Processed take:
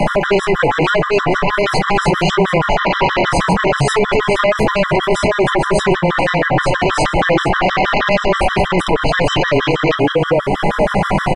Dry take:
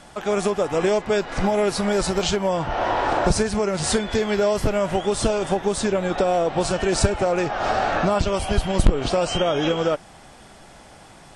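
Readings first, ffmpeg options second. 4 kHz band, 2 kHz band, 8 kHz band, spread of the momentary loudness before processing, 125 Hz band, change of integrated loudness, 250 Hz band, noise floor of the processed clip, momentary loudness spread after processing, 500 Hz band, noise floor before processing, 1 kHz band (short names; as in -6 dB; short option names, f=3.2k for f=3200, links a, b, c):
+7.5 dB, +13.5 dB, -1.0 dB, 3 LU, +8.5 dB, +7.0 dB, +6.5 dB, -22 dBFS, 2 LU, +6.0 dB, -46 dBFS, +9.5 dB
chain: -filter_complex "[0:a]aecho=1:1:448|896:0.299|0.0537,acrossover=split=2700[a][b];[a]aeval=exprs='0.562*sin(PI/2*5.62*val(0)/0.562)':c=same[c];[c][b]amix=inputs=2:normalize=0,acompressor=threshold=-28dB:ratio=2.5,flanger=delay=4.8:depth=2:regen=34:speed=0.37:shape=sinusoidal,acrossover=split=510|1500[d][e][f];[d]acompressor=threshold=-31dB:ratio=4[g];[e]acompressor=threshold=-32dB:ratio=4[h];[f]acompressor=threshold=-32dB:ratio=4[i];[g][h][i]amix=inputs=3:normalize=0,afreqshift=-13,flanger=delay=6.2:depth=8.9:regen=-72:speed=0.77:shape=sinusoidal,alimiter=level_in=29dB:limit=-1dB:release=50:level=0:latency=1,afftfilt=real='re*gt(sin(2*PI*6.3*pts/sr)*(1-2*mod(floor(b*sr/1024/1000),2)),0)':imag='im*gt(sin(2*PI*6.3*pts/sr)*(1-2*mod(floor(b*sr/1024/1000),2)),0)':win_size=1024:overlap=0.75,volume=-2dB"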